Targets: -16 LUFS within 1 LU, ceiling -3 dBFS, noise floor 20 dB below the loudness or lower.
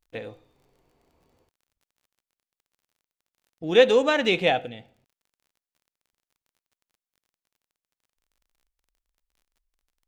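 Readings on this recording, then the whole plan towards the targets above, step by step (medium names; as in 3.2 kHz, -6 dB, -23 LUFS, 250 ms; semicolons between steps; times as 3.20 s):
tick rate 31 per s; loudness -21.0 LUFS; peak level -5.0 dBFS; loudness target -16.0 LUFS
-> de-click; trim +5 dB; peak limiter -3 dBFS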